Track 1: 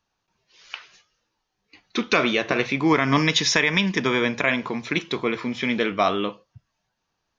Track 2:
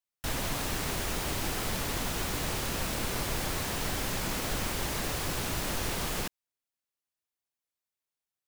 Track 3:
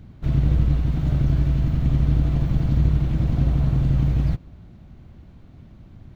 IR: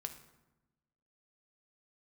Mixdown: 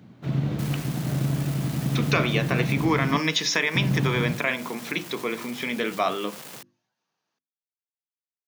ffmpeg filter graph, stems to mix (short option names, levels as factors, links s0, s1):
-filter_complex "[0:a]bandreject=f=58.21:t=h:w=4,bandreject=f=116.42:t=h:w=4,bandreject=f=174.63:t=h:w=4,bandreject=f=232.84:t=h:w=4,bandreject=f=291.05:t=h:w=4,bandreject=f=349.26:t=h:w=4,bandreject=f=407.47:t=h:w=4,bandreject=f=465.68:t=h:w=4,bandreject=f=523.89:t=h:w=4,bandreject=f=582.1:t=h:w=4,bandreject=f=640.31:t=h:w=4,volume=0.668,asplit=2[s0][s1];[1:a]acrusher=bits=4:mix=0:aa=0.000001,adelay=350,volume=0.355[s2];[2:a]volume=1.12,asplit=3[s3][s4][s5];[s3]atrim=end=3.16,asetpts=PTS-STARTPTS,afade=t=out:st=3.156:d=0.004:c=hsin[s6];[s4]atrim=start=3.16:end=3.75,asetpts=PTS-STARTPTS,volume=0[s7];[s5]atrim=start=3.75,asetpts=PTS-STARTPTS,afade=t=in:d=0.004:c=hsin[s8];[s6][s7][s8]concat=n=3:v=0:a=1[s9];[s1]apad=whole_len=393668[s10];[s2][s10]sidechaincompress=threshold=0.0398:ratio=8:attack=6.6:release=123[s11];[s0][s11][s9]amix=inputs=3:normalize=0,highpass=f=140:w=0.5412,highpass=f=140:w=1.3066,bandreject=f=50:t=h:w=6,bandreject=f=100:t=h:w=6,bandreject=f=150:t=h:w=6,bandreject=f=200:t=h:w=6,bandreject=f=250:t=h:w=6,bandreject=f=300:t=h:w=6,bandreject=f=350:t=h:w=6"